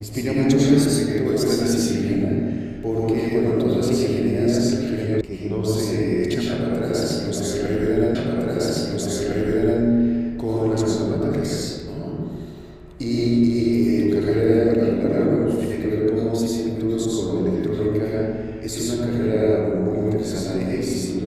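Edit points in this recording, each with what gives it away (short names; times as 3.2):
5.21 sound cut off
8.15 repeat of the last 1.66 s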